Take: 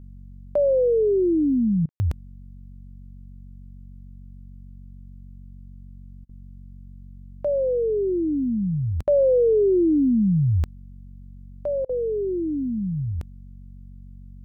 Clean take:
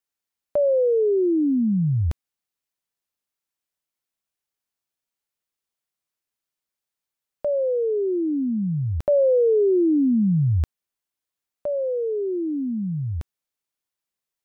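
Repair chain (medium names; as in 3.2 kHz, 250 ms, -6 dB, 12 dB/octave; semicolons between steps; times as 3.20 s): de-hum 46.7 Hz, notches 5; room tone fill 1.89–2.00 s; interpolate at 1.86/6.25/9.03/11.85 s, 41 ms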